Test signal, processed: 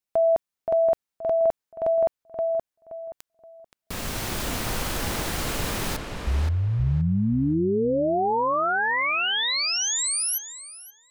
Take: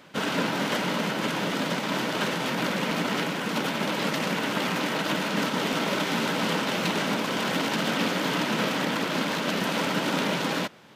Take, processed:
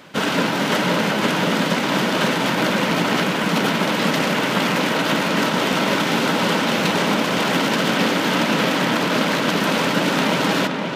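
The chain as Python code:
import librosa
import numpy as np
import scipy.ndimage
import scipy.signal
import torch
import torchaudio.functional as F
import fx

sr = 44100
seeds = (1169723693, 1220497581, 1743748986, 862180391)

p1 = fx.rider(x, sr, range_db=4, speed_s=0.5)
p2 = x + (p1 * librosa.db_to_amplitude(1.0))
y = fx.echo_filtered(p2, sr, ms=524, feedback_pct=28, hz=2800.0, wet_db=-4.0)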